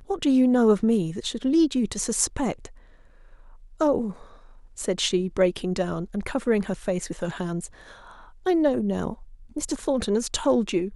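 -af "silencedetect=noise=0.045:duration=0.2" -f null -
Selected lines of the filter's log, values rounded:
silence_start: 2.66
silence_end: 3.81 | silence_duration: 1.15
silence_start: 4.10
silence_end: 4.80 | silence_duration: 0.69
silence_start: 7.65
silence_end: 8.46 | silence_duration: 0.81
silence_start: 9.13
silence_end: 9.57 | silence_duration: 0.43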